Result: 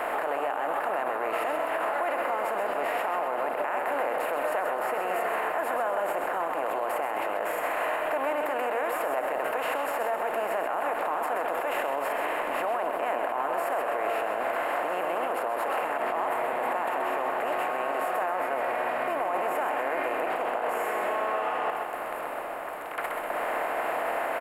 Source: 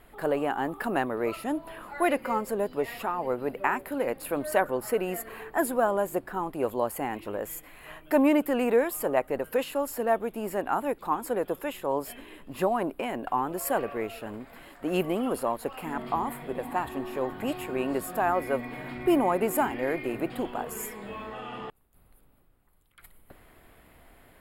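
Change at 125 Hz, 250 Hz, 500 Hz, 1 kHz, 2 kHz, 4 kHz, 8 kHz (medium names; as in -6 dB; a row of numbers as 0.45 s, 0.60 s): under -10 dB, -11.0 dB, 0.0 dB, +4.0 dB, +5.0 dB, +1.0 dB, -5.5 dB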